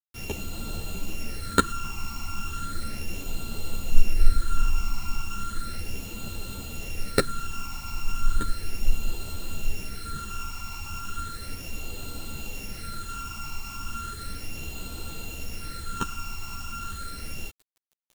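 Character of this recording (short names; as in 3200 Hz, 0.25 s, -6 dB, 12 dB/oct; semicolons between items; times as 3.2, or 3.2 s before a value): a buzz of ramps at a fixed pitch in blocks of 32 samples; phasing stages 8, 0.35 Hz, lowest notch 500–1800 Hz; a quantiser's noise floor 8-bit, dither none; a shimmering, thickened sound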